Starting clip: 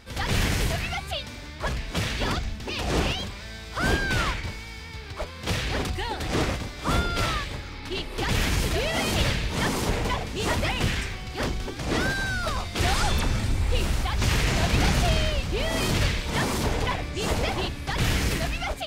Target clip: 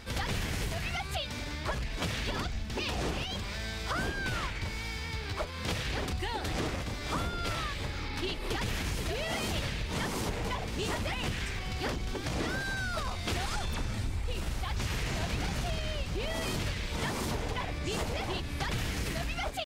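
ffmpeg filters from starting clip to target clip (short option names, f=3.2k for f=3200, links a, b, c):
-af "acompressor=threshold=-33dB:ratio=6,bandreject=f=263.4:t=h:w=4,bandreject=f=526.8:t=h:w=4,atempo=0.96,volume=2.5dB"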